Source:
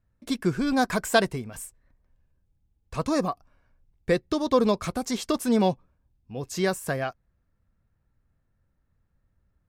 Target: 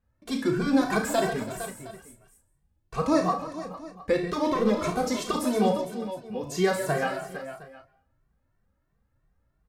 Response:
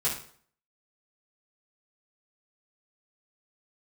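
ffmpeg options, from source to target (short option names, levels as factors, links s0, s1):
-filter_complex "[0:a]equalizer=f=790:w=0.41:g=5,alimiter=limit=0.266:level=0:latency=1:release=103,asettb=1/sr,asplit=3[s0][s1][s2];[s0]atrim=end=4.184[s3];[s1]atrim=start=4.18:end=5.19,asetpts=PTS-STARTPTS,afade=t=in:d=0.004:c=qsin,afade=t=out:st=1.006:d=0.004:c=qsin,asoftclip=type=hard:threshold=0.141[s4];[s2]atrim=start=5.186[s5];[s3][s4]acrossfade=d=0.004:c1=hsin:c2=qsin[s6];[s6][s5]acrossfade=d=0.004:c1=qsin:c2=hsin,asplit=2[s7][s8];[s8]adelay=34,volume=0.422[s9];[s7][s9]amix=inputs=2:normalize=0,aecho=1:1:56|70|139|331|458|714:0.266|0.251|0.299|0.133|0.251|0.106,asplit=2[s10][s11];[1:a]atrim=start_sample=2205,asetrate=36603,aresample=44100,adelay=127[s12];[s11][s12]afir=irnorm=-1:irlink=0,volume=0.0422[s13];[s10][s13]amix=inputs=2:normalize=0,asplit=2[s14][s15];[s15]adelay=2.1,afreqshift=3[s16];[s14][s16]amix=inputs=2:normalize=1"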